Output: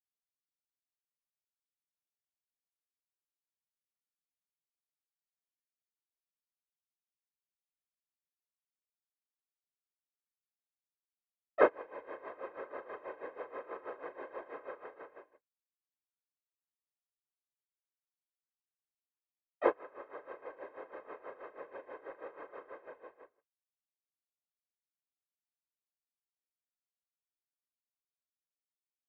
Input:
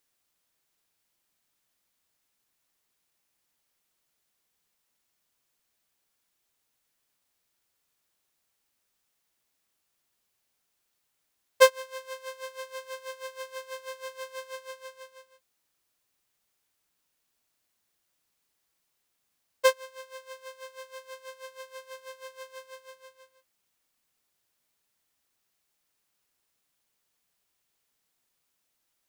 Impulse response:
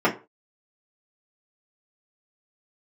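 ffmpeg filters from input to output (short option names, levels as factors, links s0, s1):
-filter_complex "[0:a]lowpass=f=1800:w=0.5412,lowpass=f=1800:w=1.3066,asplit=3[s0][s1][s2];[s1]asetrate=35002,aresample=44100,atempo=1.25992,volume=0.631[s3];[s2]asetrate=52444,aresample=44100,atempo=0.840896,volume=0.447[s4];[s0][s3][s4]amix=inputs=3:normalize=0,asplit=2[s5][s6];[s6]acompressor=threshold=0.00447:ratio=6,volume=1.26[s7];[s5][s7]amix=inputs=2:normalize=0,afftfilt=real='hypot(re,im)*cos(2*PI*random(0))':imag='hypot(re,im)*sin(2*PI*random(1))':win_size=512:overlap=0.75,agate=range=0.0224:threshold=0.00282:ratio=3:detection=peak,volume=0.75"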